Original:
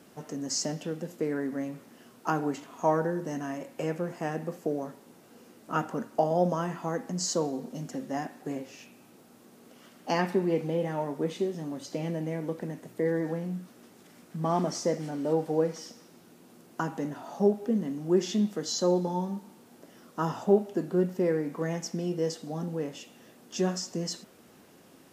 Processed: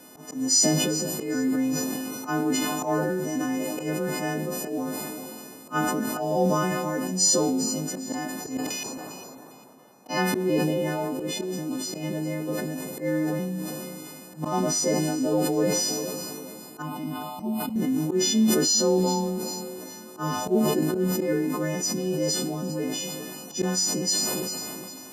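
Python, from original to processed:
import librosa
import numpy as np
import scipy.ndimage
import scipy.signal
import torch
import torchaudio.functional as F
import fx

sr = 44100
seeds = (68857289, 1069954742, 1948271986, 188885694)

y = fx.freq_snap(x, sr, grid_st=3)
y = fx.peak_eq(y, sr, hz=270.0, db=8.5, octaves=0.73)
y = fx.level_steps(y, sr, step_db=21, at=(8.57, 10.09))
y = fx.auto_swell(y, sr, attack_ms=102.0)
y = fx.dmg_noise_band(y, sr, seeds[0], low_hz=140.0, high_hz=990.0, level_db=-58.0)
y = fx.fixed_phaser(y, sr, hz=1700.0, stages=6, at=(16.82, 17.76))
y = fx.echo_feedback(y, sr, ms=403, feedback_pct=52, wet_db=-17)
y = fx.sustainer(y, sr, db_per_s=21.0)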